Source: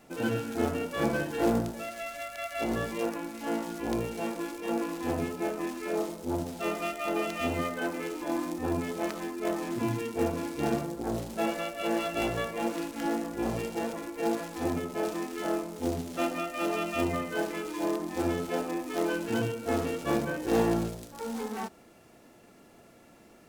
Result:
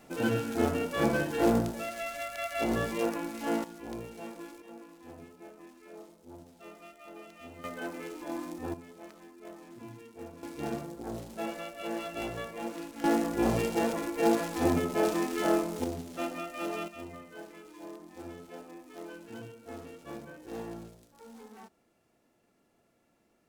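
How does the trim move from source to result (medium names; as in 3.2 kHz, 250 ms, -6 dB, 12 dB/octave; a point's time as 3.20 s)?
+1 dB
from 3.64 s -9.5 dB
from 4.62 s -18 dB
from 7.64 s -6 dB
from 8.74 s -16.5 dB
from 10.43 s -6.5 dB
from 13.04 s +4 dB
from 15.84 s -5 dB
from 16.88 s -15 dB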